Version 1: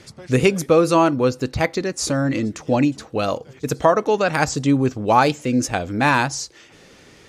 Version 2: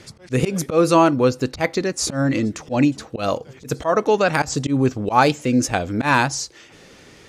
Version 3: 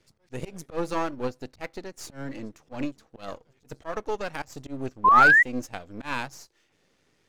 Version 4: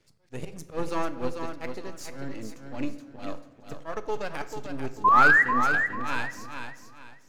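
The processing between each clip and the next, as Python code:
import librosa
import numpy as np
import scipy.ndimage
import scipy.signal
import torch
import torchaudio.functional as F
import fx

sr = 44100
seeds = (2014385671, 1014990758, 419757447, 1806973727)

y1 = fx.auto_swell(x, sr, attack_ms=106.0)
y1 = F.gain(torch.from_numpy(y1), 1.5).numpy()
y2 = np.where(y1 < 0.0, 10.0 ** (-12.0 / 20.0) * y1, y1)
y2 = fx.spec_paint(y2, sr, seeds[0], shape='rise', start_s=5.04, length_s=0.39, low_hz=990.0, high_hz=2000.0, level_db=-9.0)
y2 = fx.upward_expand(y2, sr, threshold_db=-33.0, expansion=1.5)
y2 = F.gain(torch.from_numpy(y2), -6.0).numpy()
y3 = fx.echo_feedback(y2, sr, ms=442, feedback_pct=29, wet_db=-7.0)
y3 = fx.room_shoebox(y3, sr, seeds[1], volume_m3=480.0, walls='mixed', distance_m=0.36)
y3 = F.gain(torch.from_numpy(y3), -2.0).numpy()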